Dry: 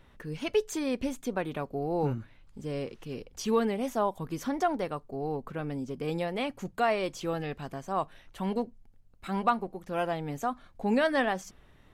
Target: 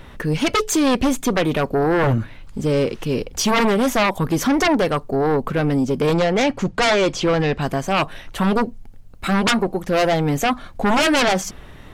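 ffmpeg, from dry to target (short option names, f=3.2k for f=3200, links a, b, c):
-filter_complex "[0:a]asettb=1/sr,asplit=3[a][b][c];[a]atrim=end=6.134[d];[b]atrim=start=6.13:end=7.61,asetpts=PTS-STARTPTS,afade=t=in:d=0.004:c=qsin,afade=t=out:st=1.476:d=0.004:c=qsin,lowpass=5.7k[e];[c]atrim=start=7.606[f];[d][e]acrossfade=d=0.004:c1=hsin:c2=qsin[g];[g][f]acrossfade=d=0.004:c1=qsin:c2=hsin,aeval=exprs='0.224*sin(PI/2*5.01*val(0)/0.224)':c=same"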